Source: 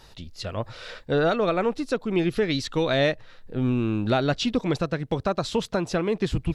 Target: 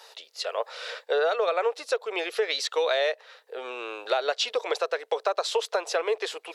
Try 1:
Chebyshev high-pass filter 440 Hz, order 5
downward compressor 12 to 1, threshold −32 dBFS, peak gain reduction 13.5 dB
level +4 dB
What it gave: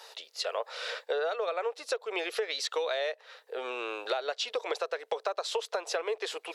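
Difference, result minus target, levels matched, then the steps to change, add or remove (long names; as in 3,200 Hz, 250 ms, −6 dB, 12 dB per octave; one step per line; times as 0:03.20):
downward compressor: peak gain reduction +7 dB
change: downward compressor 12 to 1, threshold −24.5 dBFS, peak gain reduction 6.5 dB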